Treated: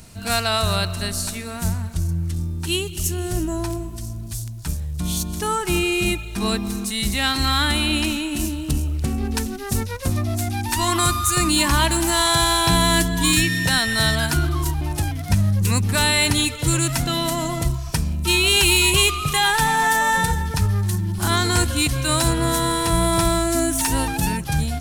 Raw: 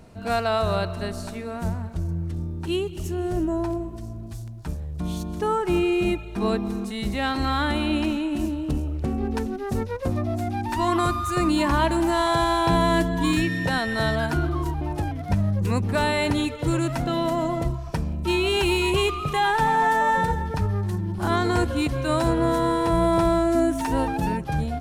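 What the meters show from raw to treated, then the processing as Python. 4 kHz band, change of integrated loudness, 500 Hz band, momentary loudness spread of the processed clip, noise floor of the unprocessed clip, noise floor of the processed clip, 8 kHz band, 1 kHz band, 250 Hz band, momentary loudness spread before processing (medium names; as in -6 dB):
+11.5 dB, +4.0 dB, -2.0 dB, 9 LU, -35 dBFS, -31 dBFS, +18.0 dB, +1.0 dB, 0.0 dB, 9 LU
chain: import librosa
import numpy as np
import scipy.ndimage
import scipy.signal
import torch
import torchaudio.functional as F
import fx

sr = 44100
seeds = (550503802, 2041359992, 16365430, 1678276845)

y = fx.curve_eq(x, sr, hz=(120.0, 520.0, 9300.0), db=(0, -9, 14))
y = y * 10.0 ** (5.0 / 20.0)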